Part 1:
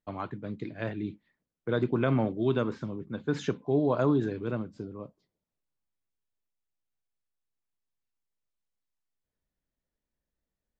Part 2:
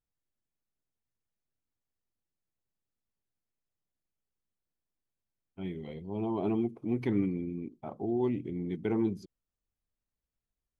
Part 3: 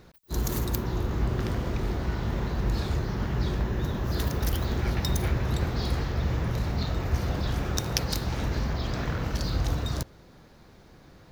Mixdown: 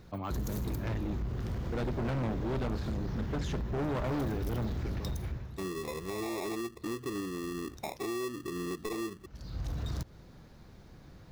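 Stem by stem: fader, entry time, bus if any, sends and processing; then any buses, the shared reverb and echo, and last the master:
-2.5 dB, 0.05 s, no bus, no send, none
-1.5 dB, 0.00 s, bus A, no send, high-order bell 730 Hz +15 dB 2.7 oct; rotary cabinet horn 0.75 Hz; sample-and-hold 29×
-4.5 dB, 0.00 s, bus A, no send, auto duck -22 dB, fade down 0.45 s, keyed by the second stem
bus A: 0.0 dB, compression 8:1, threshold -35 dBFS, peak gain reduction 19 dB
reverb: none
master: tone controls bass +6 dB, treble +1 dB; overload inside the chain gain 30 dB

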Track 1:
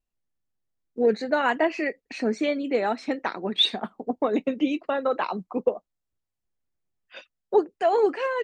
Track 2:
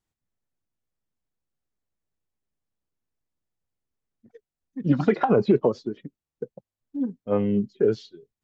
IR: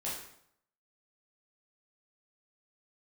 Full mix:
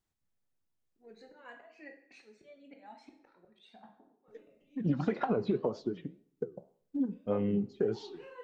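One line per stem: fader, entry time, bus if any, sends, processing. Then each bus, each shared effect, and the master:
-19.0 dB, 0.00 s, send -3.5 dB, slow attack 349 ms; Shepard-style flanger rising 1 Hz; auto duck -14 dB, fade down 0.60 s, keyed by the second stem
+2.5 dB, 0.00 s, muted 1.34–4.28 s, send -21 dB, compression 5:1, threshold -26 dBFS, peak gain reduction 11.5 dB; flange 1.9 Hz, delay 7.9 ms, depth 8.5 ms, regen -76%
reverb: on, RT60 0.70 s, pre-delay 8 ms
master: none

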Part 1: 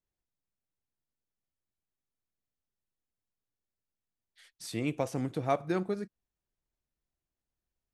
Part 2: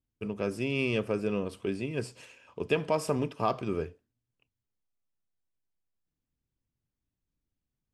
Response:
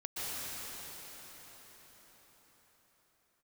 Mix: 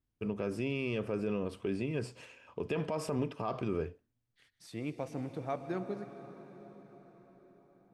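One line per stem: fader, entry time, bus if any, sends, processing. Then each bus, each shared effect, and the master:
-7.0 dB, 0.00 s, send -13 dB, none
+1.0 dB, 0.00 s, no send, none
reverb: on, RT60 5.8 s, pre-delay 112 ms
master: treble shelf 4.1 kHz -8.5 dB; peak limiter -24 dBFS, peak gain reduction 10.5 dB

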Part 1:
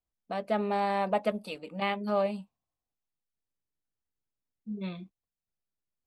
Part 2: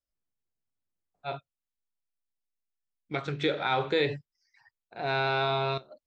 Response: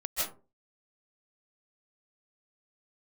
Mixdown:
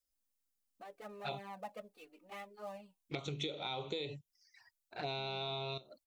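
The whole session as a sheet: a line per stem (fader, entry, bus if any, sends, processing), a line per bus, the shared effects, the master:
-14.0 dB, 0.50 s, no send, dead-time distortion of 0.078 ms; tone controls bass -3 dB, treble -6 dB; band-stop 650 Hz, Q 12
-1.0 dB, 0.00 s, no send, treble shelf 3.9 kHz +10 dB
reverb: none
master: treble shelf 5 kHz +4 dB; touch-sensitive flanger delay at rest 3.8 ms, full sweep at -31 dBFS; compression 16:1, threshold -36 dBFS, peak gain reduction 14.5 dB

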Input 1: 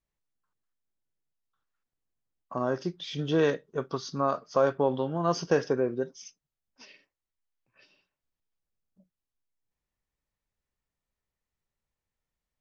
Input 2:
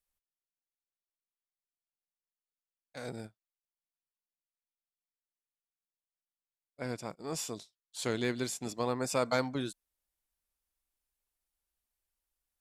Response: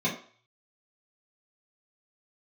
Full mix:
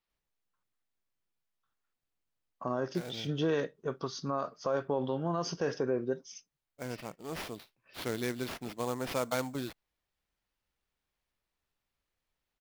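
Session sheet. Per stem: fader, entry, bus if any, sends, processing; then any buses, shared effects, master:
-2.0 dB, 0.10 s, no send, none
-2.0 dB, 0.00 s, no send, sample-rate reducer 7.8 kHz, jitter 20%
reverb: none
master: peak limiter -21.5 dBFS, peak gain reduction 8 dB

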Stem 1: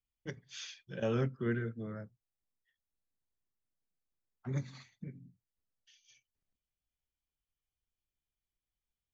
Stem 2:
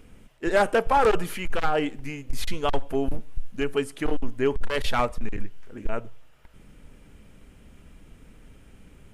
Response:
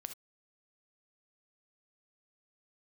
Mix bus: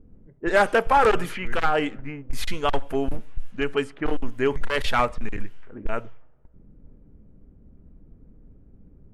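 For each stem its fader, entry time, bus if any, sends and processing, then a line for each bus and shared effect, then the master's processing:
-7.0 dB, 0.00 s, send -8 dB, peaking EQ 2 kHz +9.5 dB 0.26 oct; auto duck -6 dB, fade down 0.25 s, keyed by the second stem
-0.5 dB, 0.00 s, send -18 dB, none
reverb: on, pre-delay 3 ms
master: level-controlled noise filter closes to 310 Hz, open at -19 dBFS; peaking EQ 1.6 kHz +4.5 dB 1.8 oct

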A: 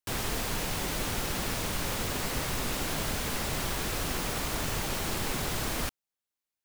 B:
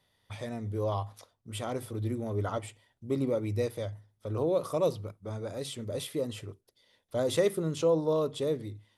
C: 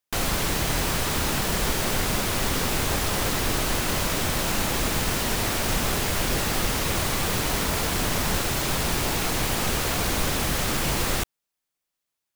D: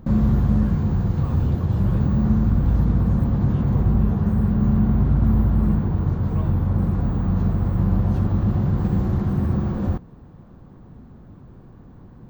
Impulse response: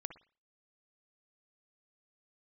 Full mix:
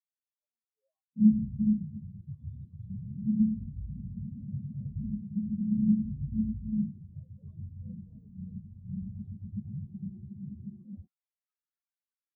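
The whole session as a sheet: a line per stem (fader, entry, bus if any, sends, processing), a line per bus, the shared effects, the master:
mute
-19.5 dB, 0.00 s, no send, level flattener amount 50%
-13.0 dB, 1.85 s, no send, high-pass 1.2 kHz 12 dB/octave
-4.0 dB, 1.10 s, no send, resonant high shelf 2.5 kHz +13 dB, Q 3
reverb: none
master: overdrive pedal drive 22 dB, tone 2.8 kHz, clips at -10.5 dBFS; spectral contrast expander 4:1

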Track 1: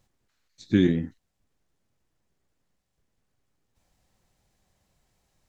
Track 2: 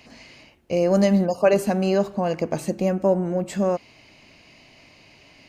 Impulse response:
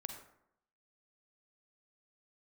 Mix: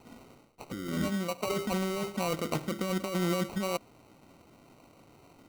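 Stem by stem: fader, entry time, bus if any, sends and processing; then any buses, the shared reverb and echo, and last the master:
-3.0 dB, 0.00 s, send -10.5 dB, none
-4.5 dB, 0.00 s, no send, local Wiener filter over 15 samples; band-stop 620 Hz, Q 12; auto duck -12 dB, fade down 0.25 s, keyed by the first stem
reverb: on, RT60 0.75 s, pre-delay 37 ms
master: bass shelf 79 Hz -10.5 dB; compressor with a negative ratio -31 dBFS, ratio -1; sample-rate reducer 1.7 kHz, jitter 0%

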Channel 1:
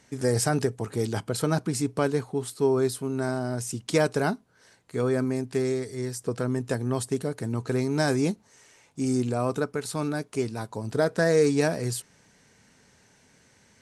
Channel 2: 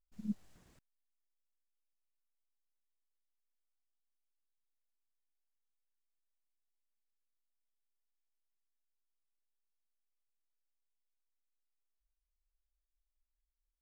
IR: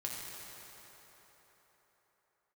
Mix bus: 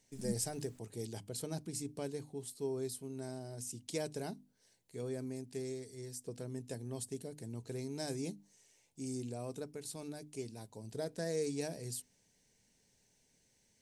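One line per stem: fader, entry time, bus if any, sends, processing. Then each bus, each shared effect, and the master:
-14.5 dB, 0.00 s, no send, peaking EQ 1.3 kHz -13.5 dB 0.84 oct; hum notches 50/100/150/200/250/300 Hz
-1.5 dB, 0.00 s, no send, none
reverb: none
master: treble shelf 4.8 kHz +7.5 dB

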